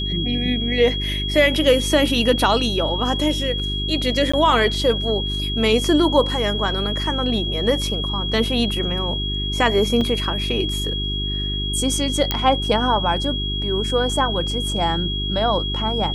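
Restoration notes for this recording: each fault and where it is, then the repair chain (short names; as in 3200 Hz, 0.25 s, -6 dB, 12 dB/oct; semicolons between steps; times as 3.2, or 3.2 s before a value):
hum 50 Hz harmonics 8 -26 dBFS
tone 3300 Hz -25 dBFS
4.32–4.33 gap 15 ms
10.01 gap 3.4 ms
12.31 pop -4 dBFS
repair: de-click; de-hum 50 Hz, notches 8; notch 3300 Hz, Q 30; interpolate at 4.32, 15 ms; interpolate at 10.01, 3.4 ms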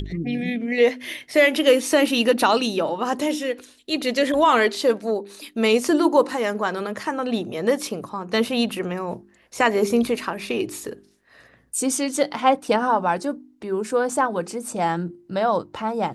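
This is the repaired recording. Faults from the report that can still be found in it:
none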